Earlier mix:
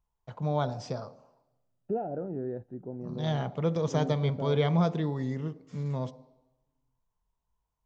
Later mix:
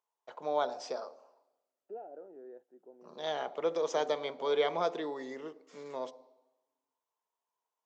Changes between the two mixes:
second voice -11.5 dB; master: add high-pass 360 Hz 24 dB/octave

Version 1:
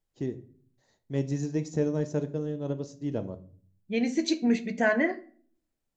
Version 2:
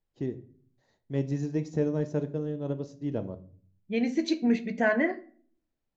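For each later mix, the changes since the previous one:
master: add distance through air 110 m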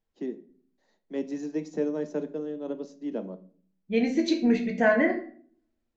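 first voice: add steep high-pass 170 Hz 96 dB/octave; second voice: send +11.0 dB

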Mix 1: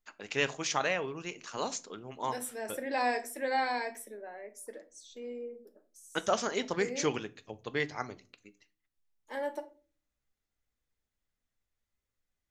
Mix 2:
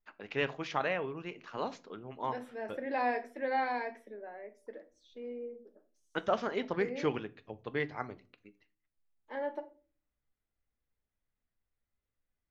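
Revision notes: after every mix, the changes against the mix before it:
master: add distance through air 320 m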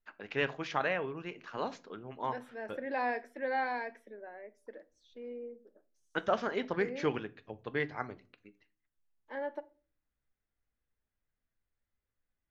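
second voice: send -8.0 dB; master: add peaking EQ 1.6 kHz +4 dB 0.32 oct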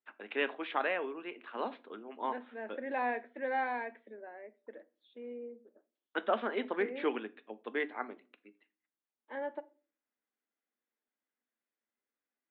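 second voice: remove steep high-pass 210 Hz; master: add Chebyshev band-pass 220–3700 Hz, order 5

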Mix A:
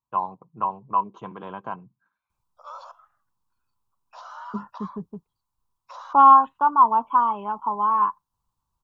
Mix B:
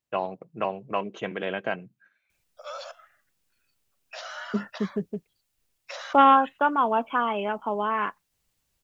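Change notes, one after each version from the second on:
master: remove FFT filter 120 Hz 0 dB, 640 Hz -11 dB, 1 kHz +12 dB, 1.9 kHz -21 dB, 3.8 kHz -12 dB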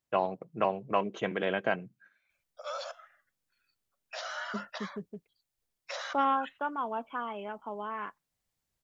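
second voice -11.0 dB; master: add peaking EQ 2.7 kHz -3.5 dB 0.26 oct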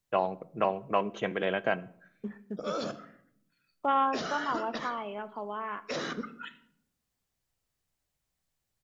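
second voice: entry -2.30 s; background: remove steep high-pass 540 Hz 96 dB/octave; reverb: on, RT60 0.65 s

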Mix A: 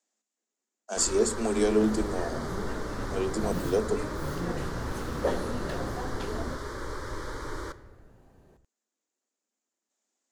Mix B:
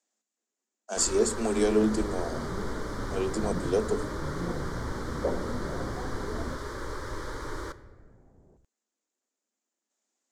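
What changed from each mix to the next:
second sound: add Gaussian low-pass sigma 8.4 samples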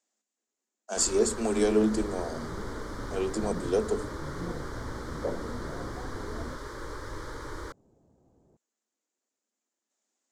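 reverb: off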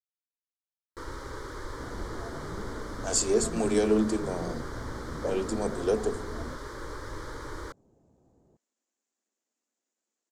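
speech: entry +2.15 s

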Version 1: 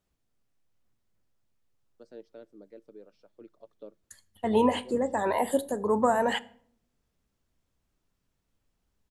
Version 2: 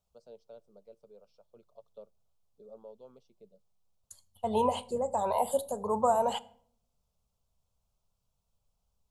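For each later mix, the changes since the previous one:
first voice: entry -1.85 s; master: add static phaser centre 750 Hz, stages 4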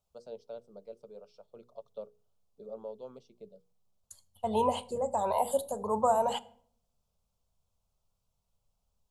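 first voice +7.5 dB; master: add hum notches 60/120/180/240/300/360/420/480 Hz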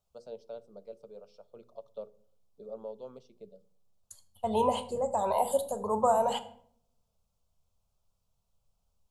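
first voice: send on; second voice: send +8.0 dB

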